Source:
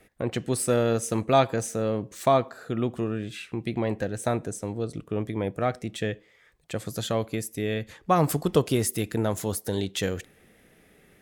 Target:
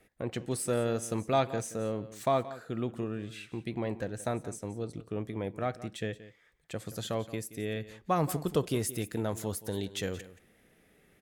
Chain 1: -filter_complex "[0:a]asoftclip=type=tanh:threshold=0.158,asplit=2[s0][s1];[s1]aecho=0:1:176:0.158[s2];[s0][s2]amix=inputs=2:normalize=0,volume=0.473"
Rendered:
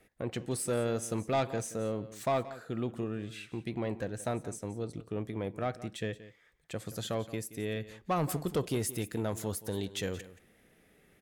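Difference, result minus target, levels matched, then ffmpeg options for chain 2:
saturation: distortion +16 dB
-filter_complex "[0:a]asoftclip=type=tanh:threshold=0.531,asplit=2[s0][s1];[s1]aecho=0:1:176:0.158[s2];[s0][s2]amix=inputs=2:normalize=0,volume=0.473"

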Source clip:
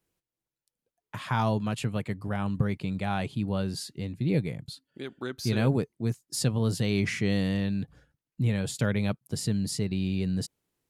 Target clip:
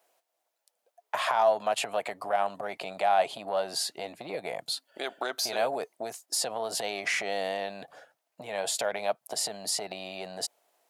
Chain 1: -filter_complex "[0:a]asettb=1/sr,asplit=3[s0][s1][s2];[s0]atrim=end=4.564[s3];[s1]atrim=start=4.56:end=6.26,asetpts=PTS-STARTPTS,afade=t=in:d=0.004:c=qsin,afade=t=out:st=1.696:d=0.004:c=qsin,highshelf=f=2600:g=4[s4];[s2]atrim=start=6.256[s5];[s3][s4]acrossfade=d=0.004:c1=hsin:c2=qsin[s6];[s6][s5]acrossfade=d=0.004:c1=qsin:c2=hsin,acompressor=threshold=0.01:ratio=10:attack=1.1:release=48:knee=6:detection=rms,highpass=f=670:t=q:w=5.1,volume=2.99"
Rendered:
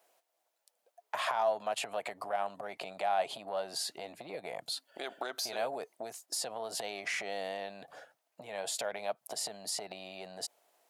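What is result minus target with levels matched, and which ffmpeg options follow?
compression: peak gain reduction +6.5 dB
-filter_complex "[0:a]asettb=1/sr,asplit=3[s0][s1][s2];[s0]atrim=end=4.564[s3];[s1]atrim=start=4.56:end=6.26,asetpts=PTS-STARTPTS,afade=t=in:d=0.004:c=qsin,afade=t=out:st=1.696:d=0.004:c=qsin,highshelf=f=2600:g=4[s4];[s2]atrim=start=6.256[s5];[s3][s4]acrossfade=d=0.004:c1=hsin:c2=qsin[s6];[s6][s5]acrossfade=d=0.004:c1=qsin:c2=hsin,acompressor=threshold=0.0237:ratio=10:attack=1.1:release=48:knee=6:detection=rms,highpass=f=670:t=q:w=5.1,volume=2.99"

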